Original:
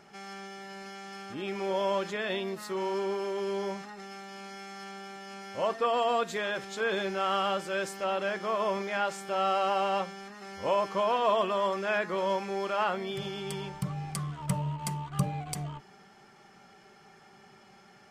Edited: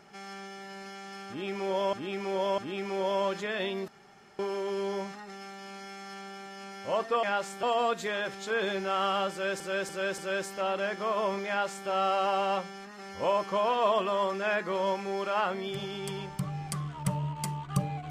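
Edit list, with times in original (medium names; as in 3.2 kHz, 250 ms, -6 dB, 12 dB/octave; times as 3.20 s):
1.28–1.93 s: loop, 3 plays
2.58–3.09 s: room tone
7.61–7.90 s: loop, 4 plays
8.91–9.31 s: copy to 5.93 s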